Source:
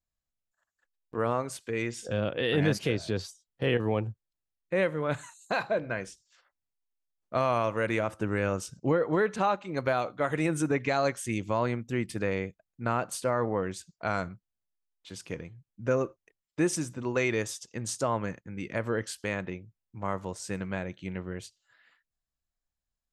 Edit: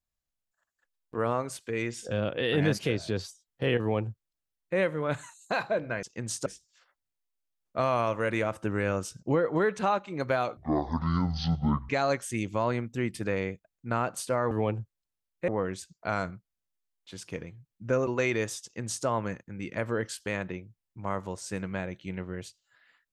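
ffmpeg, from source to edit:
-filter_complex "[0:a]asplit=8[a][b][c][d][e][f][g][h];[a]atrim=end=6.032[i];[b]atrim=start=17.608:end=18.042[j];[c]atrim=start=6.028:end=10.144[k];[d]atrim=start=10.14:end=10.84,asetpts=PTS-STARTPTS,asetrate=23373,aresample=44100,atrim=end_sample=58245,asetpts=PTS-STARTPTS[l];[e]atrim=start=10.836:end=13.462[m];[f]atrim=start=3.798:end=4.772[n];[g]atrim=start=13.458:end=16.052[o];[h]atrim=start=17.048[p];[i][j]acrossfade=d=0.004:c1=hsin:c2=hsin[q];[q][k]acrossfade=d=0.004:c1=hsin:c2=hsin[r];[r][l]acrossfade=d=0.004:c1=hsin:c2=hsin[s];[s][m]acrossfade=d=0.004:c1=hsin:c2=hsin[t];[t][n]acrossfade=d=0.004:c1=hsin:c2=hsin[u];[u][o]acrossfade=d=0.004:c1=hsin:c2=hsin[v];[v][p]acrossfade=d=0.004:c1=hsin:c2=hsin"

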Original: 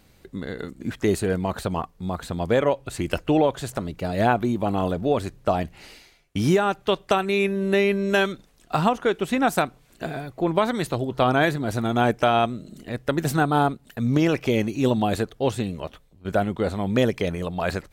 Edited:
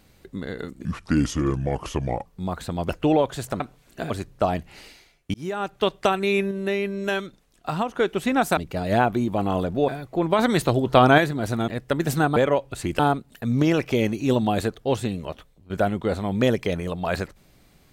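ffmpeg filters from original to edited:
-filter_complex "[0:a]asplit=16[a][b][c][d][e][f][g][h][i][j][k][l][m][n][o][p];[a]atrim=end=0.854[q];[b]atrim=start=0.85:end=1.88,asetpts=PTS-STARTPTS,asetrate=32193,aresample=44100,atrim=end_sample=62223,asetpts=PTS-STARTPTS[r];[c]atrim=start=1.876:end=2.512[s];[d]atrim=start=3.138:end=3.852[t];[e]atrim=start=9.628:end=10.132[u];[f]atrim=start=5.158:end=6.4,asetpts=PTS-STARTPTS,afade=t=out:st=1.238:d=0.004:c=hsin[v];[g]atrim=start=6.4:end=7.572,asetpts=PTS-STARTPTS,afade=t=in:d=0.5[w];[h]atrim=start=7.568:end=9.012,asetpts=PTS-STARTPTS,volume=-5dB[x];[i]atrim=start=9.008:end=9.632[y];[j]atrim=start=3.848:end=5.162[z];[k]atrim=start=10.128:end=10.642[aa];[l]atrim=start=10.638:end=11.432,asetpts=PTS-STARTPTS,volume=5dB[ab];[m]atrim=start=11.428:end=11.932[ac];[n]atrim=start=12.858:end=13.542[ad];[o]atrim=start=2.508:end=3.142[ae];[p]atrim=start=13.538[af];[q][r]acrossfade=d=0.004:c1=hsin:c2=hsin[ag];[ag][s]acrossfade=d=0.004:c1=hsin:c2=hsin[ah];[ah][t]acrossfade=d=0.004:c1=hsin:c2=hsin[ai];[ai][u]acrossfade=d=0.004:c1=hsin:c2=hsin[aj];[v][w]concat=n=2:v=0:a=1[ak];[aj][ak]acrossfade=d=0.004:c1=hsin:c2=hsin[al];[al][x]acrossfade=d=0.004:c1=hsin:c2=hsin[am];[am][y]acrossfade=d=0.004:c1=hsin:c2=hsin[an];[an][z]acrossfade=d=0.004:c1=hsin:c2=hsin[ao];[ao][aa]acrossfade=d=0.004:c1=hsin:c2=hsin[ap];[ap][ab]acrossfade=d=0.004:c1=hsin:c2=hsin[aq];[aq][ac]acrossfade=d=0.004:c1=hsin:c2=hsin[ar];[ar][ad]acrossfade=d=0.004:c1=hsin:c2=hsin[as];[as][ae]acrossfade=d=0.004:c1=hsin:c2=hsin[at];[at][af]acrossfade=d=0.004:c1=hsin:c2=hsin"

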